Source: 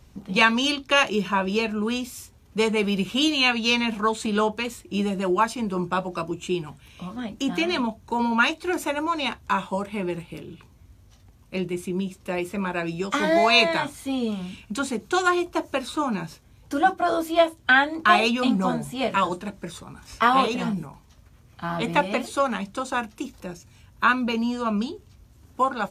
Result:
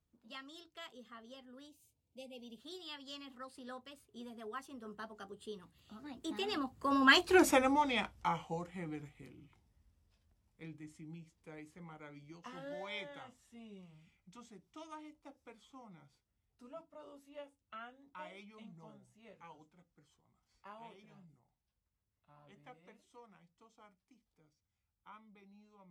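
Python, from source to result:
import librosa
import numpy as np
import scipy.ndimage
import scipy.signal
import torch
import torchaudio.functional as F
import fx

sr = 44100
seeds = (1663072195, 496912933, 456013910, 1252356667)

y = fx.doppler_pass(x, sr, speed_mps=54, closest_m=12.0, pass_at_s=7.39)
y = fx.spec_erase(y, sr, start_s=1.68, length_s=0.9, low_hz=970.0, high_hz=2100.0)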